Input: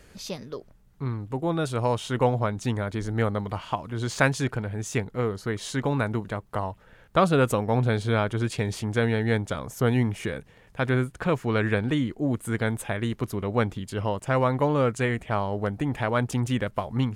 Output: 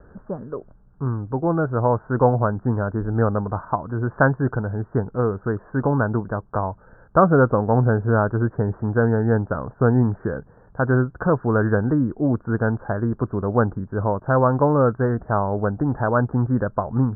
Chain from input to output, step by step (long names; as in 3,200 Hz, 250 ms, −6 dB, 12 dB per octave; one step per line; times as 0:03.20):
Butterworth low-pass 1,600 Hz 96 dB per octave
level +5.5 dB